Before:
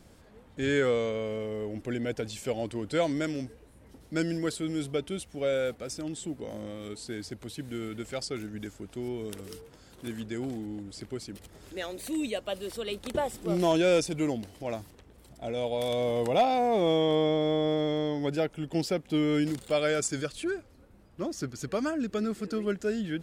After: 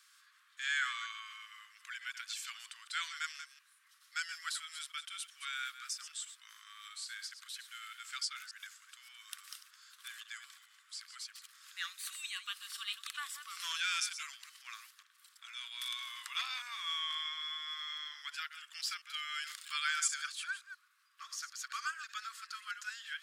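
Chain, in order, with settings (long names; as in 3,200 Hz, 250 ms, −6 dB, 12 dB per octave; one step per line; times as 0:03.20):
delay that plays each chunk backwards 133 ms, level −10.5 dB
Chebyshev high-pass with heavy ripple 1,100 Hz, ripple 3 dB
level +1 dB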